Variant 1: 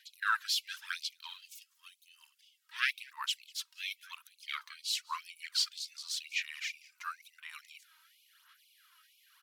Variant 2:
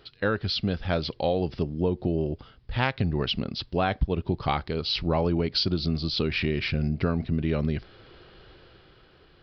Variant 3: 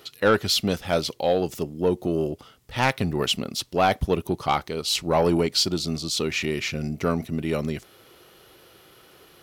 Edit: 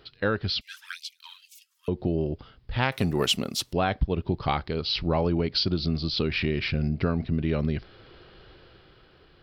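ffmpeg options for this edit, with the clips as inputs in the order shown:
-filter_complex "[1:a]asplit=3[a][b][c];[a]atrim=end=0.612[d];[0:a]atrim=start=0.608:end=1.882[e];[b]atrim=start=1.878:end=2.922[f];[2:a]atrim=start=2.918:end=3.732[g];[c]atrim=start=3.728[h];[d][e]acrossfade=d=0.004:c1=hsin:c2=hsin[i];[i][f]acrossfade=d=0.004:c1=hsin:c2=hsin[j];[j][g]acrossfade=d=0.004:c1=hsin:c2=hsin[k];[k][h]acrossfade=d=0.004:c1=hsin:c2=hsin"

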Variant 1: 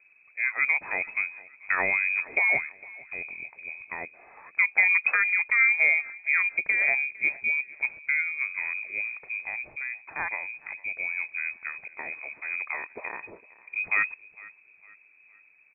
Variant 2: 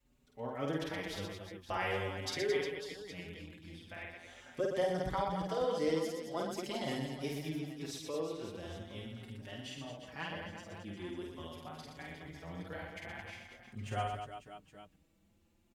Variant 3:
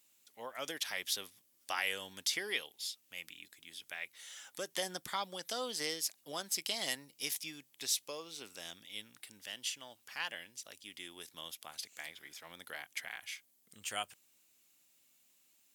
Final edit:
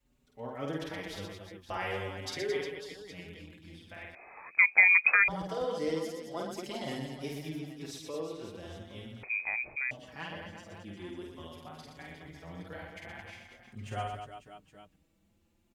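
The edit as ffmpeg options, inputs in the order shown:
-filter_complex "[0:a]asplit=2[a][b];[1:a]asplit=3[c][d][e];[c]atrim=end=4.152[f];[a]atrim=start=4.148:end=5.282[g];[d]atrim=start=5.278:end=9.232[h];[b]atrim=start=9.228:end=9.912[i];[e]atrim=start=9.908[j];[f][g]acrossfade=d=0.004:c1=hsin:c2=hsin[k];[k][h]acrossfade=d=0.004:c1=hsin:c2=hsin[l];[l][i]acrossfade=d=0.004:c1=hsin:c2=hsin[m];[m][j]acrossfade=d=0.004:c1=hsin:c2=hsin"

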